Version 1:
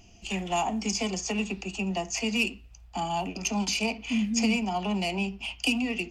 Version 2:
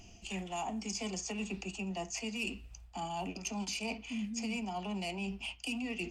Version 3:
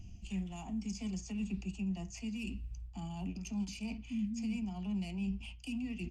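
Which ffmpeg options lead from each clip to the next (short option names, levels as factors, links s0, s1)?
-af "equalizer=f=8500:t=o:w=0.42:g=5,areverse,acompressor=threshold=0.0141:ratio=4,areverse"
-af "firequalizer=gain_entry='entry(120,0);entry(450,-22);entry(2500,-18)':delay=0.05:min_phase=1,volume=2.66"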